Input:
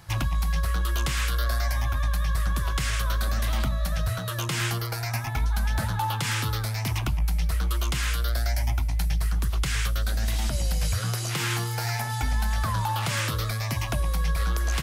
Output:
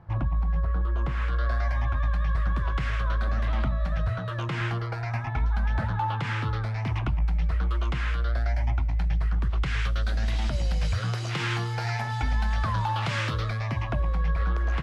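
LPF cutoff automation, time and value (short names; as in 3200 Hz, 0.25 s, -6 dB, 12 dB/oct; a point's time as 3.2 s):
0.96 s 1000 Hz
1.49 s 2100 Hz
9.46 s 2100 Hz
10 s 3700 Hz
13.3 s 3700 Hz
13.88 s 1900 Hz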